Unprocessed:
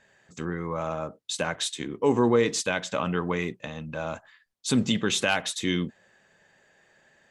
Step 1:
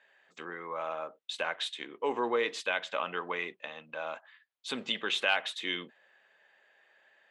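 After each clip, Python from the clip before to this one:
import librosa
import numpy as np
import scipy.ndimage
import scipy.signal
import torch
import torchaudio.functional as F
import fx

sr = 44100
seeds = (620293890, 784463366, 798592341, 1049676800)

y = scipy.signal.sosfilt(scipy.signal.butter(2, 540.0, 'highpass', fs=sr, output='sos'), x)
y = fx.high_shelf_res(y, sr, hz=4500.0, db=-11.0, q=1.5)
y = F.gain(torch.from_numpy(y), -3.5).numpy()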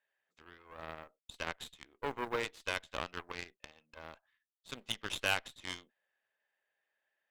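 y = fx.quant_companded(x, sr, bits=8)
y = fx.cheby_harmonics(y, sr, harmonics=(3, 6, 7), levels_db=(-33, -22, -19), full_scale_db=-13.5)
y = F.gain(torch.from_numpy(y), -3.5).numpy()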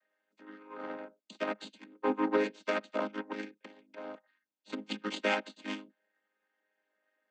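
y = fx.chord_vocoder(x, sr, chord='major triad', root=56)
y = F.gain(torch.from_numpy(y), 6.5).numpy()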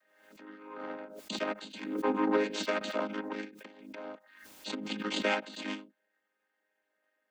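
y = fx.pre_swell(x, sr, db_per_s=58.0)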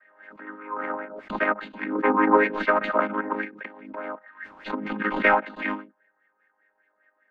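y = fx.tracing_dist(x, sr, depth_ms=0.037)
y = fx.filter_lfo_lowpass(y, sr, shape='sine', hz=5.0, low_hz=990.0, high_hz=2100.0, q=4.1)
y = F.gain(torch.from_numpy(y), 6.5).numpy()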